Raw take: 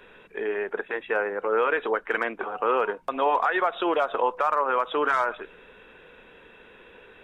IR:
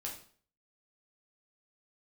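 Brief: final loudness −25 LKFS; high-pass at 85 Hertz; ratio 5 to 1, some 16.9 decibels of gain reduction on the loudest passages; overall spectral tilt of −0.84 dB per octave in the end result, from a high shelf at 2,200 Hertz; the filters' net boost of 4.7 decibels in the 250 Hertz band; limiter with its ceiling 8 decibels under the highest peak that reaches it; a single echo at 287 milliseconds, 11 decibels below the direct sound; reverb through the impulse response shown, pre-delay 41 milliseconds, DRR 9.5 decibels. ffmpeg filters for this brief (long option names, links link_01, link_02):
-filter_complex "[0:a]highpass=85,equalizer=frequency=250:width_type=o:gain=7,highshelf=frequency=2200:gain=7.5,acompressor=threshold=-37dB:ratio=5,alimiter=level_in=5.5dB:limit=-24dB:level=0:latency=1,volume=-5.5dB,aecho=1:1:287:0.282,asplit=2[link_01][link_02];[1:a]atrim=start_sample=2205,adelay=41[link_03];[link_02][link_03]afir=irnorm=-1:irlink=0,volume=-8.5dB[link_04];[link_01][link_04]amix=inputs=2:normalize=0,volume=15.5dB"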